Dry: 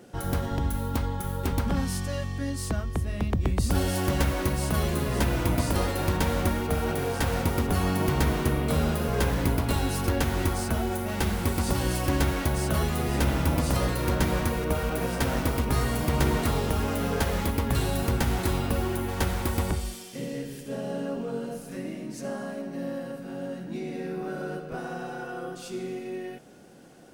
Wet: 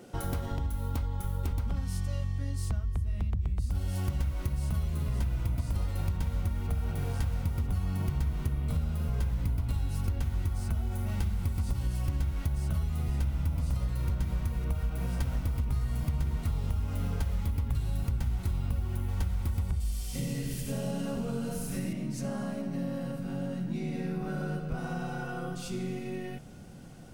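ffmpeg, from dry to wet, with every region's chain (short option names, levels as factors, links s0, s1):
-filter_complex "[0:a]asettb=1/sr,asplit=3[s0][s1][s2];[s0]atrim=end=19.804[s3];[s1]atrim=start=19.8:end=21.93,asetpts=PTS-STARTPTS,afade=t=in:d=0.004:c=qsin,afade=t=out:st=2.126:d=0.004:c=qsin,highshelf=f=4200:g=8.5,aecho=1:1:96|192|288|384|480:0.501|0.21|0.0884|0.0371|0.0156,atrim=end_sample=93933[s4];[s2]atrim=start=21.926[s5];[s3][s4]acrossfade=d=0.004:c1=hsin:c2=qsin[s6];[s6][s5]acrossfade=d=0.004:c1=qsin:c2=hsin,bandreject=f=1700:w=12,asubboost=boost=7.5:cutoff=130,acompressor=threshold=0.0355:ratio=5"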